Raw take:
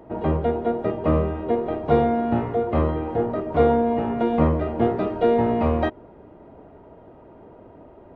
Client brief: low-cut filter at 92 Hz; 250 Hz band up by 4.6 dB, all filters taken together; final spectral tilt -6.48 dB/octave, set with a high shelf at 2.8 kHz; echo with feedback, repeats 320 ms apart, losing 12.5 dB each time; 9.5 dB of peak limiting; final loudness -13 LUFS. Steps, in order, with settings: high-pass 92 Hz; peaking EQ 250 Hz +5.5 dB; treble shelf 2.8 kHz -3 dB; peak limiter -13.5 dBFS; feedback delay 320 ms, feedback 24%, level -12.5 dB; trim +9.5 dB

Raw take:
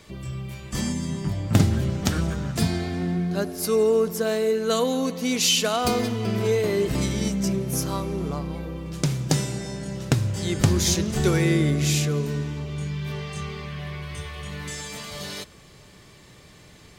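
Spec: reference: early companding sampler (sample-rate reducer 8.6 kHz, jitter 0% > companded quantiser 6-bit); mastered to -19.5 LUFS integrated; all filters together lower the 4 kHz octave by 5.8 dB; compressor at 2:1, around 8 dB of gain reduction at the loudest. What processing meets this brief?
peaking EQ 4 kHz -8 dB; compression 2:1, threshold -27 dBFS; sample-rate reducer 8.6 kHz, jitter 0%; companded quantiser 6-bit; trim +10 dB

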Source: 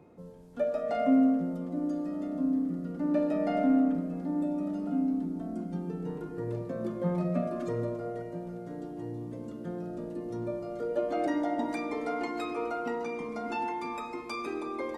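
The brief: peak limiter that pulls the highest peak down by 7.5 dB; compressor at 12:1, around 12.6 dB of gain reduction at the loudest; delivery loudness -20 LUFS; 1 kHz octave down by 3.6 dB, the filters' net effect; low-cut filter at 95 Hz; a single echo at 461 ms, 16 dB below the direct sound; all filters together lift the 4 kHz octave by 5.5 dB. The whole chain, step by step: high-pass 95 Hz; peaking EQ 1 kHz -6 dB; peaking EQ 4 kHz +7 dB; compression 12:1, threshold -33 dBFS; peak limiter -33 dBFS; delay 461 ms -16 dB; trim +20.5 dB

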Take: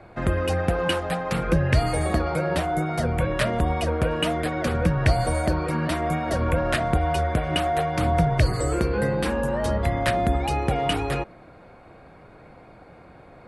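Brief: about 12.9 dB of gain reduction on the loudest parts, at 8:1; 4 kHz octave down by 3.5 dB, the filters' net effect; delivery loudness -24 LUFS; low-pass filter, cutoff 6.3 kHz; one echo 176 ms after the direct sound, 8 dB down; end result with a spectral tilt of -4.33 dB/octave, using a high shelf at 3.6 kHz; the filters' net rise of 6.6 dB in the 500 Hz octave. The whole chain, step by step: low-pass 6.3 kHz; peaking EQ 500 Hz +8 dB; treble shelf 3.6 kHz +4.5 dB; peaking EQ 4 kHz -8.5 dB; compression 8:1, threshold -27 dBFS; delay 176 ms -8 dB; trim +6 dB

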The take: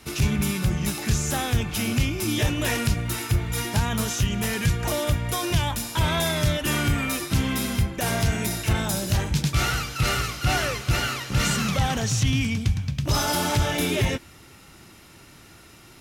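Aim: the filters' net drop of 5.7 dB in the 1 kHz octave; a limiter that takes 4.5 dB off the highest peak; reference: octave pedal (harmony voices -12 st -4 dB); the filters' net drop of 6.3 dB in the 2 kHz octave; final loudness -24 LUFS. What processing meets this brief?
peaking EQ 1 kHz -6 dB; peaking EQ 2 kHz -6.5 dB; peak limiter -16 dBFS; harmony voices -12 st -4 dB; trim +1.5 dB

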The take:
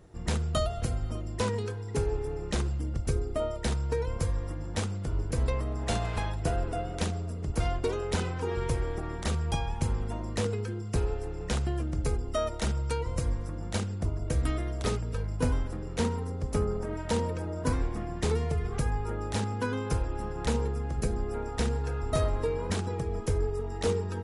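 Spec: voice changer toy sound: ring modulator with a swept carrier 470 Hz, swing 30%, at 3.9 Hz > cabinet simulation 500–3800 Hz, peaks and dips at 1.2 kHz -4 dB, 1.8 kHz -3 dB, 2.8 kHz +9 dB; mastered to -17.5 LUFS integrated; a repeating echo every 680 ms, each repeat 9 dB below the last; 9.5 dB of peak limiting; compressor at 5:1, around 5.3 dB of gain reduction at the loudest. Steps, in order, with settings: compression 5:1, threshold -29 dBFS; peak limiter -29 dBFS; feedback delay 680 ms, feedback 35%, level -9 dB; ring modulator with a swept carrier 470 Hz, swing 30%, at 3.9 Hz; cabinet simulation 500–3800 Hz, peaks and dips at 1.2 kHz -4 dB, 1.8 kHz -3 dB, 2.8 kHz +9 dB; trim +25 dB

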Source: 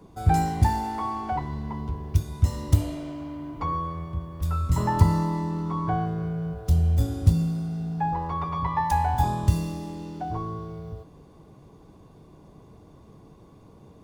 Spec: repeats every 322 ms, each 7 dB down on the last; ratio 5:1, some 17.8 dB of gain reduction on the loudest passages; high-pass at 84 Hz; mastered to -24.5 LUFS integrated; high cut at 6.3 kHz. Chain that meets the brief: high-pass 84 Hz; low-pass 6.3 kHz; compression 5:1, threshold -36 dBFS; feedback delay 322 ms, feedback 45%, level -7 dB; trim +13 dB

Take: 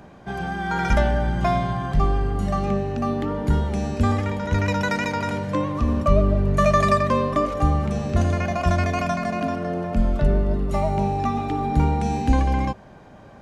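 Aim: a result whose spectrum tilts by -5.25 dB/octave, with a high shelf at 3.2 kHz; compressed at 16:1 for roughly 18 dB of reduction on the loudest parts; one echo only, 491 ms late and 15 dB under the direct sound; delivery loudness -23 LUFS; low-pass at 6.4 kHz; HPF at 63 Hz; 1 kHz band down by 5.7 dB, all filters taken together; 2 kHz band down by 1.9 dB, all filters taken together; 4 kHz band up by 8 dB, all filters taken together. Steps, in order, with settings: high-pass 63 Hz; low-pass 6.4 kHz; peaking EQ 1 kHz -8 dB; peaking EQ 2 kHz -3.5 dB; treble shelf 3.2 kHz +6.5 dB; peaking EQ 4 kHz +7.5 dB; compression 16:1, threshold -34 dBFS; delay 491 ms -15 dB; trim +15.5 dB

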